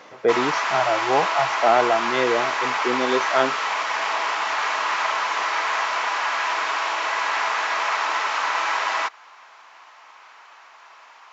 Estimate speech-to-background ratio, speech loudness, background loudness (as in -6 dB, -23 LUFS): 0.0 dB, -23.0 LUFS, -23.0 LUFS